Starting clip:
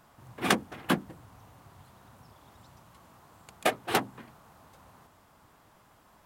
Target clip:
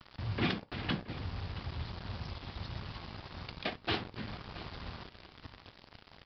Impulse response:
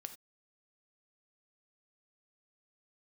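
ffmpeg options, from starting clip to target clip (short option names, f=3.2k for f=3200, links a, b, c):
-filter_complex "[0:a]equalizer=f=840:w=0.31:g=-14,acompressor=threshold=-45dB:ratio=2.5,alimiter=level_in=14dB:limit=-24dB:level=0:latency=1:release=399,volume=-14dB,afreqshift=-15,acrusher=bits=9:mix=0:aa=0.000001,aecho=1:1:674|1348:0.141|0.0325,asplit=2[a][b];[1:a]atrim=start_sample=2205,atrim=end_sample=3087[c];[b][c]afir=irnorm=-1:irlink=0,volume=9.5dB[d];[a][d]amix=inputs=2:normalize=0,aresample=11025,aresample=44100,volume=9.5dB"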